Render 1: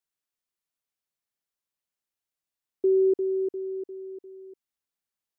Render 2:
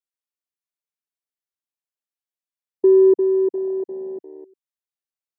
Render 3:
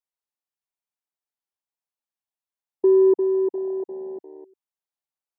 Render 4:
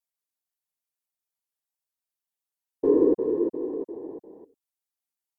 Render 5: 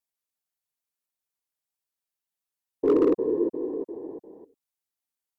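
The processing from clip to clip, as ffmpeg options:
ffmpeg -i in.wav -af "afwtdn=0.0251,highpass=200,volume=9dB" out.wav
ffmpeg -i in.wav -af "equalizer=frequency=850:width=1.7:gain=8.5,volume=-4dB" out.wav
ffmpeg -i in.wav -af "afftfilt=real='hypot(re,im)*cos(2*PI*random(0))':imag='hypot(re,im)*sin(2*PI*random(1))':win_size=512:overlap=0.75,aemphasis=mode=production:type=cd,volume=2.5dB" out.wav
ffmpeg -i in.wav -af "asoftclip=type=hard:threshold=-14dB" out.wav

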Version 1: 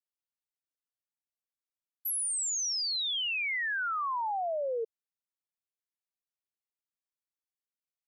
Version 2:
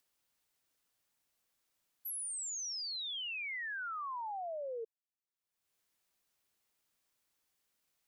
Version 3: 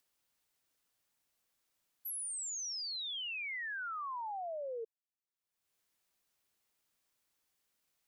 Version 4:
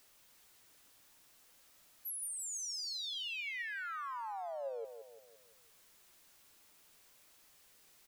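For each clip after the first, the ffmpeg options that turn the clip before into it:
ffmpeg -i in.wav -af "acompressor=mode=upward:threshold=-53dB:ratio=2.5,volume=-8.5dB" out.wav
ffmpeg -i in.wav -af anull out.wav
ffmpeg -i in.wav -af "aeval=exprs='val(0)+0.5*0.00168*sgn(val(0))':channel_layout=same,flanger=delay=1.5:depth=2.1:regen=84:speed=0.54:shape=sinusoidal,aecho=1:1:171|342|513|684|855:0.355|0.167|0.0784|0.0368|0.0173,volume=2.5dB" out.wav

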